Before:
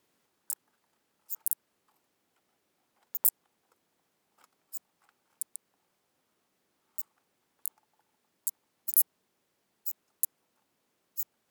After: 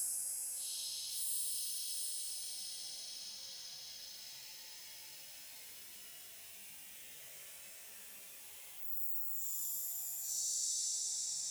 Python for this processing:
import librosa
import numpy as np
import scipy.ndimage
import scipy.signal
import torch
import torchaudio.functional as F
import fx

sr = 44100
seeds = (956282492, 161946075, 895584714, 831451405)

y = fx.low_shelf(x, sr, hz=490.0, db=10.0)
y = fx.dmg_crackle(y, sr, seeds[0], per_s=580.0, level_db=-52.0)
y = fx.fixed_phaser(y, sr, hz=1300.0, stages=6)
y = fx.comb_fb(y, sr, f0_hz=67.0, decay_s=0.57, harmonics='all', damping=0.0, mix_pct=100)
y = fx.echo_pitch(y, sr, ms=386, semitones=-6, count=3, db_per_echo=-6.0)
y = fx.paulstretch(y, sr, seeds[1], factor=4.9, window_s=0.1, from_s=5.15)
y = fx.band_squash(y, sr, depth_pct=70)
y = y * 10.0 ** (12.5 / 20.0)